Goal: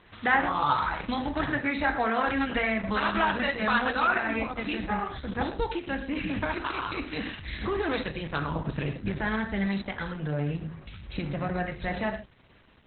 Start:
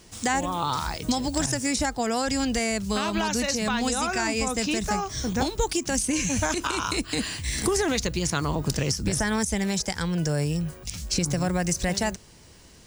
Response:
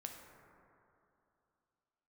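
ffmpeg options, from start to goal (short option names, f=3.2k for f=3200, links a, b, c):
-filter_complex "[0:a]asetnsamples=n=441:p=0,asendcmd='4.18 equalizer g 5.5',equalizer=f=1.5k:w=0.78:g=12[a];[1:a]atrim=start_sample=2205,atrim=end_sample=6174[b];[a][b]afir=irnorm=-1:irlink=0" -ar 48000 -c:a libopus -b:a 8k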